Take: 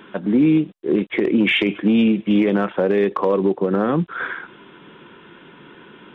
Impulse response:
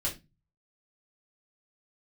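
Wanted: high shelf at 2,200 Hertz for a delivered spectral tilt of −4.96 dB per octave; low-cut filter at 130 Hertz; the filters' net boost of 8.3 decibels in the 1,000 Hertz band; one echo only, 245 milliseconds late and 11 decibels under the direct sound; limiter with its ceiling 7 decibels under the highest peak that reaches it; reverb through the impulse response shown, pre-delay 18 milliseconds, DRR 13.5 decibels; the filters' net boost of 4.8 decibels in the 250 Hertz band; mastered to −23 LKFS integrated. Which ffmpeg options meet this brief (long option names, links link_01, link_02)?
-filter_complex "[0:a]highpass=130,equalizer=frequency=250:width_type=o:gain=6,equalizer=frequency=1000:width_type=o:gain=9,highshelf=frequency=2200:gain=4,alimiter=limit=-7dB:level=0:latency=1,aecho=1:1:245:0.282,asplit=2[link_01][link_02];[1:a]atrim=start_sample=2205,adelay=18[link_03];[link_02][link_03]afir=irnorm=-1:irlink=0,volume=-17.5dB[link_04];[link_01][link_04]amix=inputs=2:normalize=0,volume=-7dB"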